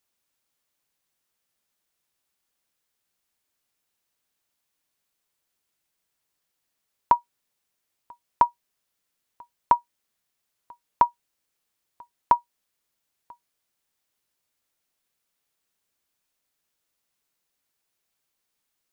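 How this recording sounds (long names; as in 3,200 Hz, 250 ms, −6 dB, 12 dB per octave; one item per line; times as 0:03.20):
background noise floor −80 dBFS
spectral slope −3.5 dB per octave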